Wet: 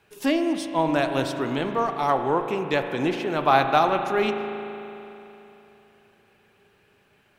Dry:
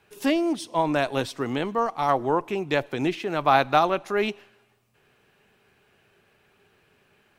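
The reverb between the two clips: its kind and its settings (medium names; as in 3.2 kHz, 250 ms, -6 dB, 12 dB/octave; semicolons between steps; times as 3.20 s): spring tank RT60 3.2 s, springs 37 ms, chirp 65 ms, DRR 6 dB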